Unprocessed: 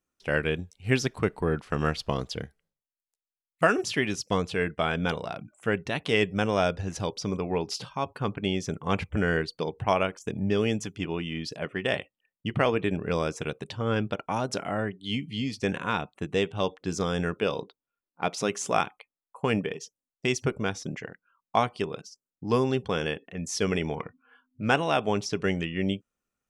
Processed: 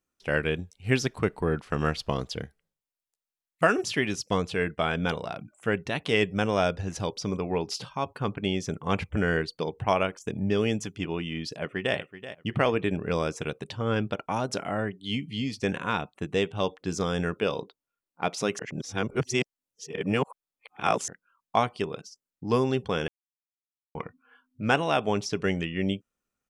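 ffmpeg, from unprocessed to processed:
ffmpeg -i in.wav -filter_complex "[0:a]asplit=2[link_01][link_02];[link_02]afade=type=in:start_time=11.51:duration=0.01,afade=type=out:start_time=11.96:duration=0.01,aecho=0:1:380|760:0.223872|0.0447744[link_03];[link_01][link_03]amix=inputs=2:normalize=0,asplit=5[link_04][link_05][link_06][link_07][link_08];[link_04]atrim=end=18.592[link_09];[link_05]atrim=start=18.588:end=21.082,asetpts=PTS-STARTPTS,areverse[link_10];[link_06]atrim=start=21.078:end=23.08,asetpts=PTS-STARTPTS,afade=type=out:start_time=1.998:duration=0.004:curve=hsin[link_11];[link_07]atrim=start=23.08:end=23.95,asetpts=PTS-STARTPTS,volume=0[link_12];[link_08]atrim=start=23.95,asetpts=PTS-STARTPTS,afade=type=in:duration=0.004:curve=hsin[link_13];[link_09][link_10]acrossfade=duration=0.004:curve1=hsin:curve2=hsin[link_14];[link_11][link_12][link_13]concat=n=3:v=0:a=1[link_15];[link_14][link_15]acrossfade=duration=0.004:curve1=hsin:curve2=hsin" out.wav

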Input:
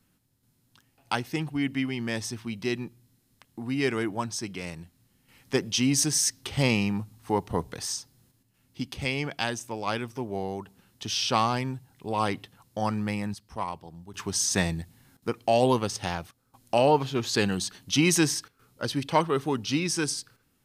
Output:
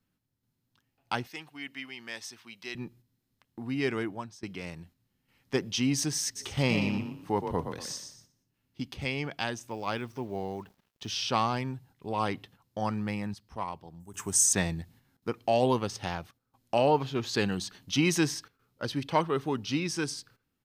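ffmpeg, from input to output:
ffmpeg -i in.wav -filter_complex "[0:a]asettb=1/sr,asplit=3[link_01][link_02][link_03];[link_01]atrim=end=1.274[link_04];[link_02]atrim=start=1.27:end=2.75,asetpts=PTS-STARTPTS,afade=type=in:duration=0.004:curve=qsin,afade=type=out:start_time=1.476:duration=0.004:curve=qsin,highpass=frequency=1500:poles=1[link_05];[link_03]atrim=start=2.746[link_06];[link_04][link_05]acrossfade=duration=0.004:curve1=hsin:curve2=qsin[link_07];[link_07][link_06]acrossfade=duration=0.004:curve1=qsin:curve2=hsin,asplit=3[link_08][link_09][link_10];[link_08]afade=type=out:start_time=6.35:duration=0.02[link_11];[link_09]asplit=5[link_12][link_13][link_14][link_15][link_16];[link_13]adelay=119,afreqshift=35,volume=-7dB[link_17];[link_14]adelay=238,afreqshift=70,volume=-17.5dB[link_18];[link_15]adelay=357,afreqshift=105,volume=-27.9dB[link_19];[link_16]adelay=476,afreqshift=140,volume=-38.4dB[link_20];[link_12][link_17][link_18][link_19][link_20]amix=inputs=5:normalize=0,afade=type=in:start_time=6.35:duration=0.02,afade=type=out:start_time=8.86:duration=0.02[link_21];[link_10]afade=type=in:start_time=8.86:duration=0.02[link_22];[link_11][link_21][link_22]amix=inputs=3:normalize=0,asettb=1/sr,asplit=3[link_23][link_24][link_25];[link_23]atrim=end=9.694[link_26];[link_24]atrim=start=9.69:end=11.1,asetpts=PTS-STARTPTS,afade=type=in:duration=0.004:curve=qsin,afade=type=out:start_time=1.406:duration=0.004:curve=qsin,acrusher=bits=8:mix=0:aa=0.5[link_27];[link_25]atrim=start=11.096[link_28];[link_26][link_27]acrossfade=duration=0.004:curve1=hsin:curve2=qsin[link_29];[link_29][link_28]acrossfade=duration=0.004:curve1=qsin:curve2=hsin,asettb=1/sr,asplit=3[link_30][link_31][link_32];[link_30]atrim=end=14.004[link_33];[link_31]atrim=start=14:end=14.53,asetpts=PTS-STARTPTS,afade=type=in:duration=0.004:curve=qsin,afade=type=out:start_time=0.526:duration=0.004:curve=qsin,highshelf=frequency=5900:width_type=q:width=3:gain=11[link_34];[link_32]atrim=start=14.526[link_35];[link_33][link_34]acrossfade=duration=0.004:curve1=hsin:curve2=qsin[link_36];[link_36][link_35]acrossfade=duration=0.004:curve1=qsin:curve2=hsin,asplit=2[link_37][link_38];[link_37]atrim=end=4.43,asetpts=PTS-STARTPTS,afade=type=out:start_time=3.99:duration=0.44:silence=0.105925[link_39];[link_38]atrim=start=4.43,asetpts=PTS-STARTPTS,afade=type=in:duration=0.004:curve=hsin:silence=0.105925[link_40];[link_39][link_40]concat=n=2:v=0:a=1,agate=range=-7dB:threshold=-52dB:ratio=16:detection=peak,equalizer=frequency=9600:width=0.9:gain=-7.5,volume=-3dB" out.wav

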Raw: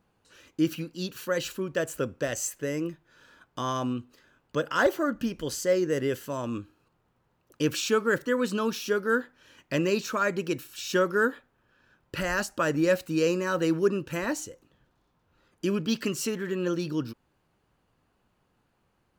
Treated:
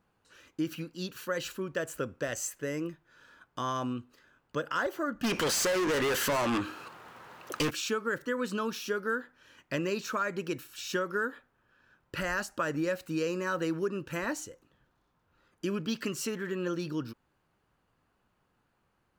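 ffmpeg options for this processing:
ffmpeg -i in.wav -filter_complex "[0:a]asplit=3[link_01][link_02][link_03];[link_01]afade=type=out:start_time=5.23:duration=0.02[link_04];[link_02]asplit=2[link_05][link_06];[link_06]highpass=frequency=720:poles=1,volume=35dB,asoftclip=type=tanh:threshold=-13.5dB[link_07];[link_05][link_07]amix=inputs=2:normalize=0,lowpass=frequency=7600:poles=1,volume=-6dB,afade=type=in:start_time=5.23:duration=0.02,afade=type=out:start_time=7.69:duration=0.02[link_08];[link_03]afade=type=in:start_time=7.69:duration=0.02[link_09];[link_04][link_08][link_09]amix=inputs=3:normalize=0,equalizer=frequency=1400:width=1.1:gain=4,acompressor=threshold=-23dB:ratio=6,volume=-4dB" out.wav

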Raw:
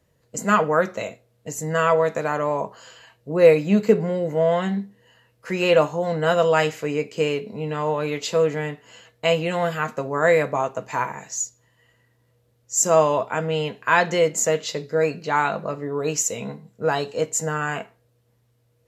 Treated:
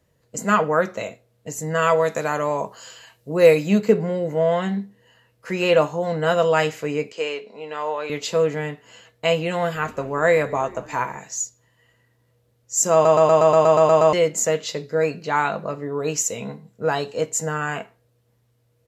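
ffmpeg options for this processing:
ffmpeg -i in.wav -filter_complex "[0:a]asettb=1/sr,asplit=3[link_01][link_02][link_03];[link_01]atrim=end=1.824[link_04];[link_02]atrim=start=1.82:end=3.78,asetpts=PTS-STARTPTS,afade=type=in:duration=0.004:curve=qsin,afade=type=out:start_time=1.956:duration=0.004:curve=qsin,highshelf=frequency=4100:gain=10[link_05];[link_03]atrim=start=3.776[link_06];[link_04][link_05]acrossfade=duration=0.004:curve1=hsin:curve2=qsin[link_07];[link_07][link_06]acrossfade=duration=0.004:curve1=qsin:curve2=hsin,asettb=1/sr,asplit=3[link_08][link_09][link_10];[link_08]atrim=end=7.124[link_11];[link_09]atrim=start=7.12:end=8.1,asetpts=PTS-STARTPTS,afade=type=in:duration=0.004:curve=qsin,afade=type=out:start_time=0.976:duration=0.004:curve=qsin,highpass=510,lowpass=6800[link_12];[link_10]atrim=start=8.096[link_13];[link_11][link_12]acrossfade=duration=0.004:curve1=hsin:curve2=qsin[link_14];[link_14][link_13]acrossfade=duration=0.004:curve1=qsin:curve2=hsin,asplit=3[link_15][link_16][link_17];[link_15]afade=type=out:start_time=9.74:duration=0.02[link_18];[link_16]asplit=5[link_19][link_20][link_21][link_22][link_23];[link_20]adelay=194,afreqshift=-70,volume=-21dB[link_24];[link_21]adelay=388,afreqshift=-140,volume=-26.2dB[link_25];[link_22]adelay=582,afreqshift=-210,volume=-31.4dB[link_26];[link_23]adelay=776,afreqshift=-280,volume=-36.6dB[link_27];[link_19][link_24][link_25][link_26][link_27]amix=inputs=5:normalize=0,afade=type=in:start_time=9.74:duration=0.02,afade=type=out:start_time=11.16:duration=0.02[link_28];[link_17]afade=type=in:start_time=11.16:duration=0.02[link_29];[link_18][link_28][link_29]amix=inputs=3:normalize=0,asplit=11[link_30][link_31][link_32][link_33][link_34][link_35][link_36][link_37][link_38][link_39][link_40];[link_30]atrim=end=13.052[link_41];[link_31]atrim=start=12.928:end=13.052[link_42];[link_32]atrim=start=12.928:end=13.052[link_43];[link_33]atrim=start=12.928:end=13.052[link_44];[link_34]atrim=start=12.928:end=13.052[link_45];[link_35]atrim=start=12.928:end=13.052[link_46];[link_36]atrim=start=12.928:end=13.052[link_47];[link_37]atrim=start=12.928:end=13.052[link_48];[link_38]atrim=start=12.928:end=13.052[link_49];[link_39]atrim=start=12.928:end=13.052[link_50];[link_40]atrim=start=14.128[link_51];[link_41][link_42]acrossfade=duration=0.004:curve1=hsin:curve2=hsin[link_52];[link_52][link_43]acrossfade=duration=0.004:curve1=hsin:curve2=hsin[link_53];[link_53][link_44]acrossfade=duration=0.004:curve1=hsin:curve2=hsin[link_54];[link_54][link_45]acrossfade=duration=0.004:curve1=hsin:curve2=hsin[link_55];[link_55][link_46]acrossfade=duration=0.004:curve1=hsin:curve2=hsin[link_56];[link_56][link_47]acrossfade=duration=0.004:curve1=hsin:curve2=hsin[link_57];[link_57][link_48]acrossfade=duration=0.004:curve1=hsin:curve2=hsin[link_58];[link_58][link_49]acrossfade=duration=0.004:curve1=hsin:curve2=hsin[link_59];[link_59][link_50]acrossfade=duration=0.004:curve1=hsin:curve2=hsin[link_60];[link_60][link_51]acrossfade=duration=0.004:curve1=hsin:curve2=hsin" out.wav

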